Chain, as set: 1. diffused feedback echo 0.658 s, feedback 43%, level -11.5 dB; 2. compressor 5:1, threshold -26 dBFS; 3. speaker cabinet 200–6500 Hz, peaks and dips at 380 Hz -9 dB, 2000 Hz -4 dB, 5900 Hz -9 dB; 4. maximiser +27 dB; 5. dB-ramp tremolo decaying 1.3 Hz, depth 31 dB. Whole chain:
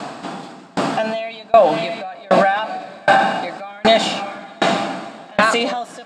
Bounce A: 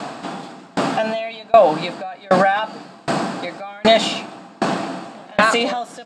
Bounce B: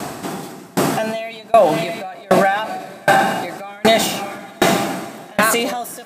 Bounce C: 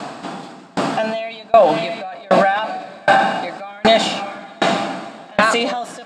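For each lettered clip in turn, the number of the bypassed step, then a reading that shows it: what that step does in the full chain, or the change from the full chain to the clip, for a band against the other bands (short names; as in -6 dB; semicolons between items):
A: 1, 2 kHz band -1.5 dB; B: 3, momentary loudness spread change -1 LU; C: 2, mean gain reduction 2.0 dB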